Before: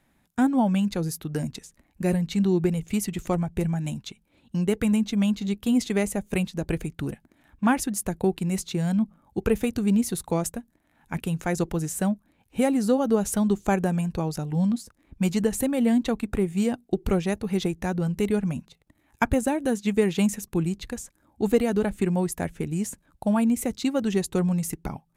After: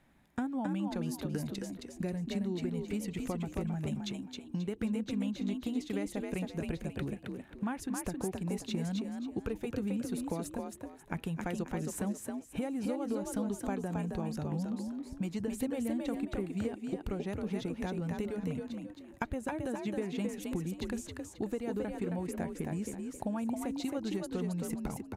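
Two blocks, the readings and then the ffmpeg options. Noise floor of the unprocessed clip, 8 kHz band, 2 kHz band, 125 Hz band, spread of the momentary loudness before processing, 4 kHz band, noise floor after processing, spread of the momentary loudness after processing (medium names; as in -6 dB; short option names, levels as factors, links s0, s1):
-67 dBFS, -12.5 dB, -11.0 dB, -10.5 dB, 10 LU, -9.5 dB, -52 dBFS, 5 LU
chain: -filter_complex "[0:a]highshelf=f=5300:g=-7.5,acompressor=threshold=0.02:ratio=6,asplit=5[s0][s1][s2][s3][s4];[s1]adelay=268,afreqshift=46,volume=0.631[s5];[s2]adelay=536,afreqshift=92,volume=0.188[s6];[s3]adelay=804,afreqshift=138,volume=0.0569[s7];[s4]adelay=1072,afreqshift=184,volume=0.017[s8];[s0][s5][s6][s7][s8]amix=inputs=5:normalize=0"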